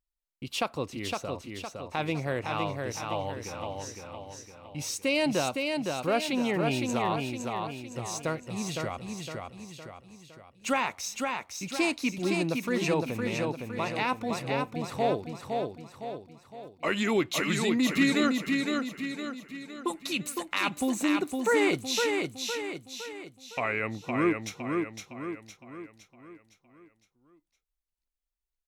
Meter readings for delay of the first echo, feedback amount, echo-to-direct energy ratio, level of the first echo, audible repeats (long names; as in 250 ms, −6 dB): 511 ms, 47%, −3.0 dB, −4.0 dB, 5